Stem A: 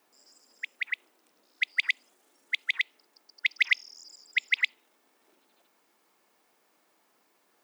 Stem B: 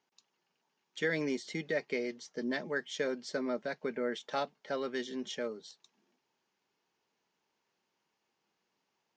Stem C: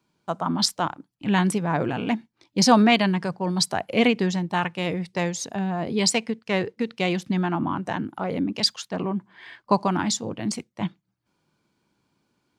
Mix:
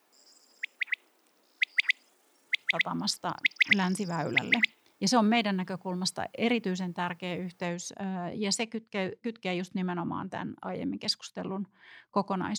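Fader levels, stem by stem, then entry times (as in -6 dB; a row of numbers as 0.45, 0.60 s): +0.5 dB, off, -8.0 dB; 0.00 s, off, 2.45 s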